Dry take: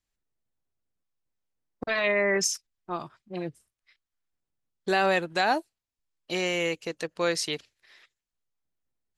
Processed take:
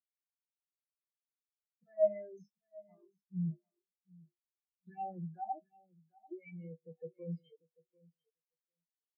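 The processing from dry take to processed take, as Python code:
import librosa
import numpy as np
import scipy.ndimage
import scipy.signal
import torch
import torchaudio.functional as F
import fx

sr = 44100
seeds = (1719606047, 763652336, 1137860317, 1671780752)

p1 = fx.spec_delay(x, sr, highs='early', ms=104)
p2 = fx.peak_eq(p1, sr, hz=160.0, db=14.0, octaves=0.47)
p3 = fx.hum_notches(p2, sr, base_hz=50, count=7)
p4 = fx.leveller(p3, sr, passes=3)
p5 = fx.rider(p4, sr, range_db=10, speed_s=2.0)
p6 = fx.phaser_stages(p5, sr, stages=6, low_hz=110.0, high_hz=4900.0, hz=0.61, feedback_pct=25)
p7 = 10.0 ** (-19.0 / 20.0) * np.tanh(p6 / 10.0 ** (-19.0 / 20.0))
p8 = fx.comb_fb(p7, sr, f0_hz=70.0, decay_s=0.42, harmonics='odd', damping=0.0, mix_pct=80)
p9 = p8 + fx.echo_feedback(p8, sr, ms=743, feedback_pct=43, wet_db=-6.0, dry=0)
p10 = fx.spectral_expand(p9, sr, expansion=4.0)
y = p10 * 10.0 ** (3.5 / 20.0)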